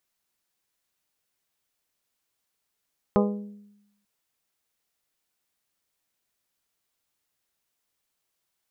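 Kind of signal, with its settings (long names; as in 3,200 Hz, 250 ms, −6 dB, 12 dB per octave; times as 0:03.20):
struck glass bell, lowest mode 205 Hz, modes 7, decay 0.92 s, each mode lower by 2 dB, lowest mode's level −18 dB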